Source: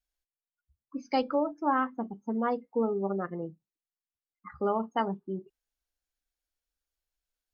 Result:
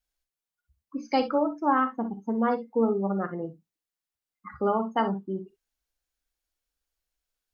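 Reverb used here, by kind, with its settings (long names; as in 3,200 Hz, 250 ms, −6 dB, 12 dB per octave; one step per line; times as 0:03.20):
reverb whose tail is shaped and stops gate 80 ms rising, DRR 9.5 dB
level +3 dB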